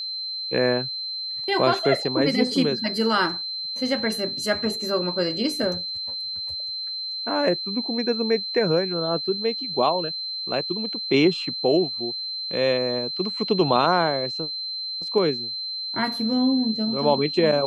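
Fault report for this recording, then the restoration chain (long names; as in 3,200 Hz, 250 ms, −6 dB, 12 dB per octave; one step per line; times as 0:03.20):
whistle 4,100 Hz −28 dBFS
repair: notch filter 4,100 Hz, Q 30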